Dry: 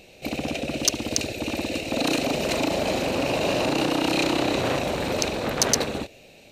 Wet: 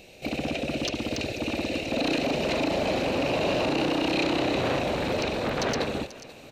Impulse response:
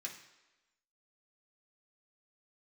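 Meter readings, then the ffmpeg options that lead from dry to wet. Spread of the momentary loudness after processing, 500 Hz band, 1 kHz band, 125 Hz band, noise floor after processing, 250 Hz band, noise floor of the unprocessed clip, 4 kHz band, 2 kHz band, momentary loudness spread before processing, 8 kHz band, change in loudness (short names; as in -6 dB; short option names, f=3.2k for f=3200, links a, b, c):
5 LU, -1.0 dB, -2.0 dB, -1.5 dB, -47 dBFS, -1.5 dB, -50 dBFS, -4.0 dB, -1.5 dB, 7 LU, -14.0 dB, -2.5 dB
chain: -filter_complex "[0:a]aecho=1:1:488|976|1464|1952:0.0794|0.0437|0.024|0.0132,asoftclip=type=tanh:threshold=-17dB,acrossover=split=5000[a][b];[b]acompressor=threshold=-51dB:ratio=4:attack=1:release=60[c];[a][c]amix=inputs=2:normalize=0"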